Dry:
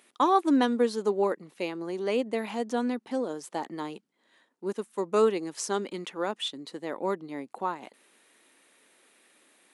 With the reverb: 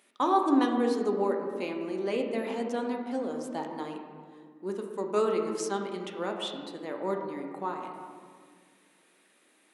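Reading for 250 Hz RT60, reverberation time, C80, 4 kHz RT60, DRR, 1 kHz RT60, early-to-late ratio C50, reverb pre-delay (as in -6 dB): 2.5 s, 1.8 s, 6.0 dB, 1.0 s, 2.0 dB, 1.7 s, 4.5 dB, 3 ms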